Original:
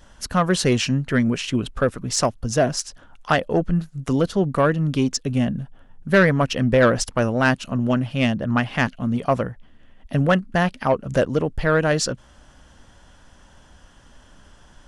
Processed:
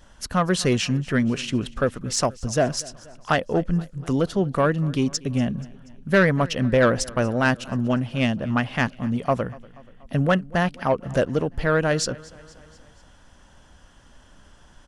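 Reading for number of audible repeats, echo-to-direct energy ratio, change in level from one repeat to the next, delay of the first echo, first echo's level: 3, −20.5 dB, −4.5 dB, 240 ms, −22.0 dB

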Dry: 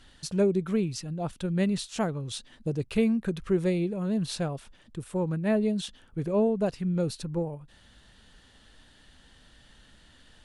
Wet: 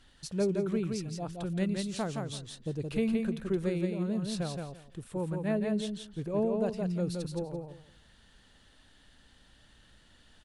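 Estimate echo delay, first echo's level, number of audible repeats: 170 ms, −4.0 dB, 3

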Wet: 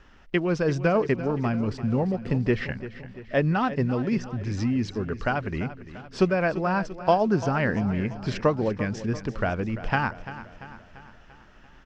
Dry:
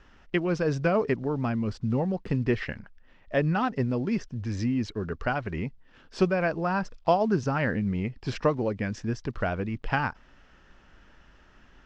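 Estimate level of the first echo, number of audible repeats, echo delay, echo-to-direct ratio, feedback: −14.0 dB, 5, 342 ms, −12.5 dB, 55%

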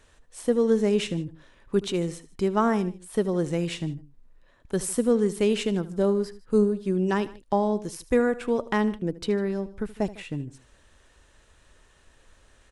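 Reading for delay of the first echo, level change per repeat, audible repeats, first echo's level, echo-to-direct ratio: 76 ms, −4.5 dB, 2, −17.5 dB, −16.0 dB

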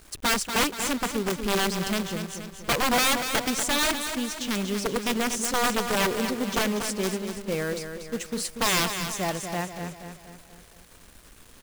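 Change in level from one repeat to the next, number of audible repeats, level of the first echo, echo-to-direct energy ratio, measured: −6.0 dB, 5, −8.0 dB, −7.0 dB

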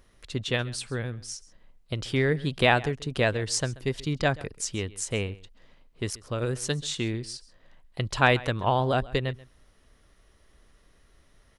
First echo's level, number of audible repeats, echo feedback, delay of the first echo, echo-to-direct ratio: −20.5 dB, 1, repeats not evenly spaced, 134 ms, −20.5 dB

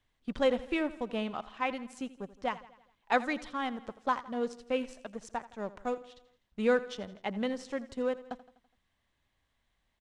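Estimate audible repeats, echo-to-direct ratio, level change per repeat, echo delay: 4, −15.5 dB, −5.5 dB, 83 ms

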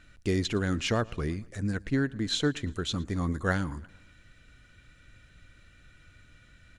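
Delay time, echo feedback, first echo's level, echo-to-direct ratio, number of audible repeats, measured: 114 ms, 56%, −24.0 dB, −22.5 dB, 3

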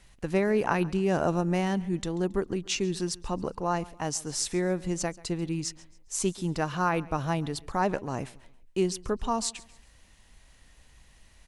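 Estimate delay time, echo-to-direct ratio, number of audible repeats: 137 ms, −21.0 dB, 2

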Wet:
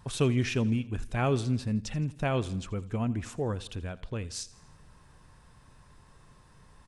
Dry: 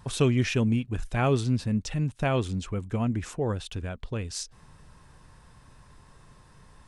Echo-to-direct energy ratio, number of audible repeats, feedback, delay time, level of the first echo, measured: −18.0 dB, 3, 55%, 83 ms, −19.5 dB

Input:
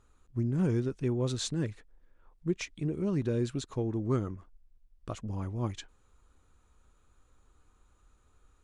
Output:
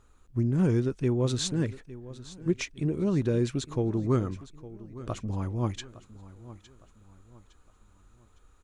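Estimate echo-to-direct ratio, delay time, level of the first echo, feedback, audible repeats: −16.5 dB, 860 ms, −17.0 dB, 38%, 3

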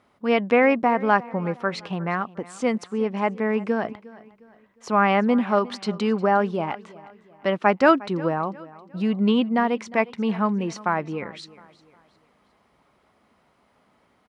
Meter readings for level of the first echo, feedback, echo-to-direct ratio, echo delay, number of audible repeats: −20.0 dB, 39%, −19.5 dB, 357 ms, 2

